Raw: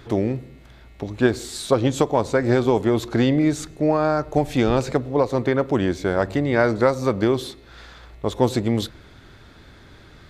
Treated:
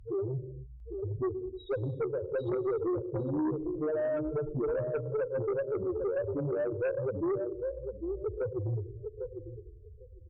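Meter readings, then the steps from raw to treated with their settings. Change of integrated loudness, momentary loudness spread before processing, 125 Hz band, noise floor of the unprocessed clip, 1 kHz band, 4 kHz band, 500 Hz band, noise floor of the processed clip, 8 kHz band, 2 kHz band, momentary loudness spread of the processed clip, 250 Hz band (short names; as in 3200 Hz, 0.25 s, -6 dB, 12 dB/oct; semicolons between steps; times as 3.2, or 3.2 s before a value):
-12.0 dB, 8 LU, -11.5 dB, -47 dBFS, -19.5 dB, under -25 dB, -9.5 dB, -51 dBFS, under -40 dB, -18.5 dB, 10 LU, -14.5 dB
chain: LPF 3000 Hz 24 dB/oct; comb 2.1 ms, depth 48%; compressor 6:1, threshold -20 dBFS, peak gain reduction 9.5 dB; loudest bins only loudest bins 2; on a send: thinning echo 0.801 s, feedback 16%, high-pass 340 Hz, level -5.5 dB; on the sum: non-linear reverb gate 0.33 s flat, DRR 11 dB; added harmonics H 4 -28 dB, 5 -14 dB, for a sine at -16 dBFS; gain -6.5 dB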